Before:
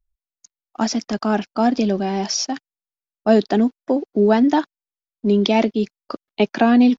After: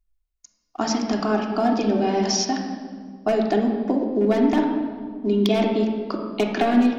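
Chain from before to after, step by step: one-sided wavefolder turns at -9 dBFS; compression 4:1, threshold -20 dBFS, peak gain reduction 9.5 dB; reverberation RT60 1.8 s, pre-delay 3 ms, DRR 0.5 dB

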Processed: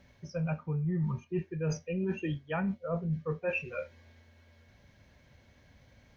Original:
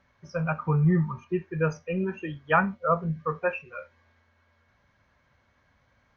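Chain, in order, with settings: peaking EQ 1.2 kHz -14.5 dB 1.1 oct; reverse; compression 10:1, threshold -38 dBFS, peak gain reduction 20 dB; reverse; trim +8.5 dB

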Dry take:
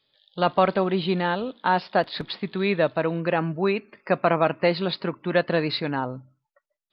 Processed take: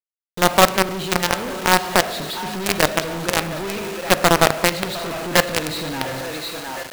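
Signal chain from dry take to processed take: thinning echo 708 ms, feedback 48%, high-pass 560 Hz, level -7.5 dB; Schroeder reverb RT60 0.92 s, combs from 26 ms, DRR 6.5 dB; companded quantiser 2-bit; trim -1 dB

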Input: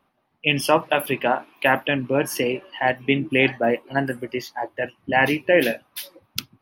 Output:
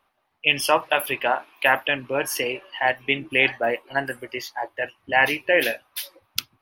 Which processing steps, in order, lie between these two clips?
peaking EQ 190 Hz -14.5 dB 2.2 oct; trim +2 dB

